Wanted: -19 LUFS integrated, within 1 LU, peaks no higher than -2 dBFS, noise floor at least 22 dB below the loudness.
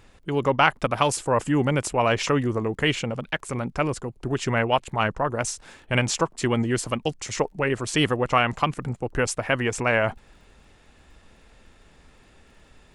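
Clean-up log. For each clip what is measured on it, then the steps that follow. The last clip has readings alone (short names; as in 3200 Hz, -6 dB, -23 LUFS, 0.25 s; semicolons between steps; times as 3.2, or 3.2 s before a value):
ticks 23/s; loudness -24.5 LUFS; peak -3.0 dBFS; loudness target -19.0 LUFS
-> de-click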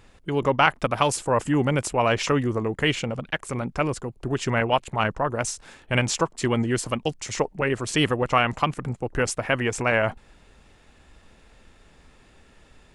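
ticks 0/s; loudness -24.5 LUFS; peak -3.0 dBFS; loudness target -19.0 LUFS
-> gain +5.5 dB; limiter -2 dBFS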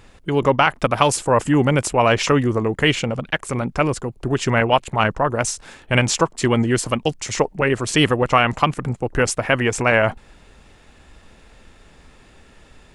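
loudness -19.0 LUFS; peak -2.0 dBFS; noise floor -50 dBFS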